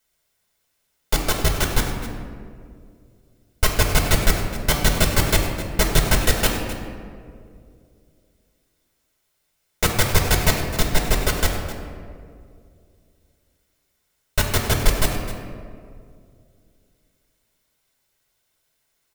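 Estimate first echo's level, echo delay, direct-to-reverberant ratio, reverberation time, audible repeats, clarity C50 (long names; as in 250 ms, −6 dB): −13.5 dB, 258 ms, 0.5 dB, 2.3 s, 1, 3.5 dB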